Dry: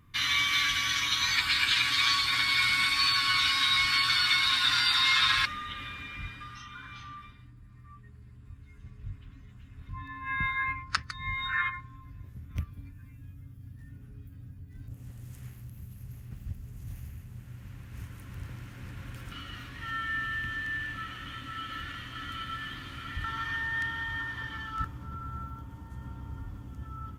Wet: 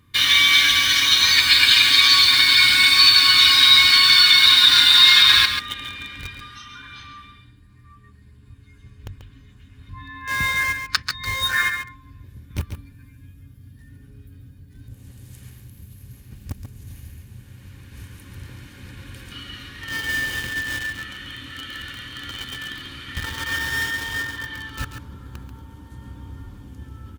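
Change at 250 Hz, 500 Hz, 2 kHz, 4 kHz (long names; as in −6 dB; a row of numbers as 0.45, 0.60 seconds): +7.0, +11.0, +9.5, +14.0 decibels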